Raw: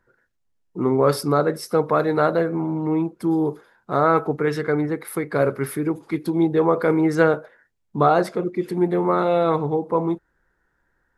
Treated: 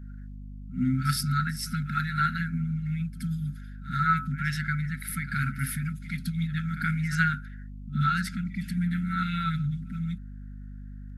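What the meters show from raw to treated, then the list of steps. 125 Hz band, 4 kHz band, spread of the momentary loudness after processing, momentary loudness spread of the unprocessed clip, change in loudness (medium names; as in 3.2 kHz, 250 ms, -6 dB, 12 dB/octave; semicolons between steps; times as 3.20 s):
+0.5 dB, 0.0 dB, 18 LU, 7 LU, -8.0 dB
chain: hum 50 Hz, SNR 19 dB; FFT band-reject 260–1300 Hz; reverse echo 75 ms -14 dB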